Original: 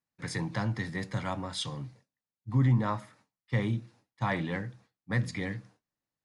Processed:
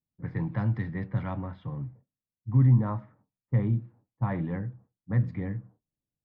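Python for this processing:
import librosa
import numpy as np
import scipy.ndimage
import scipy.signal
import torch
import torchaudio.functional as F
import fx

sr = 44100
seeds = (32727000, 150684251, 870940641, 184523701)

y = fx.lowpass(x, sr, hz=fx.steps((0.0, 2300.0), (2.63, 1400.0)), slope=12)
y = fx.env_lowpass(y, sr, base_hz=510.0, full_db=-25.5)
y = fx.low_shelf(y, sr, hz=210.0, db=11.5)
y = y * 10.0 ** (-3.5 / 20.0)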